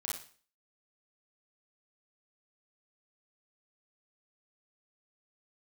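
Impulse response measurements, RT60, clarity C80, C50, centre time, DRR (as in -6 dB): 0.45 s, 8.5 dB, 0.5 dB, 44 ms, -4.5 dB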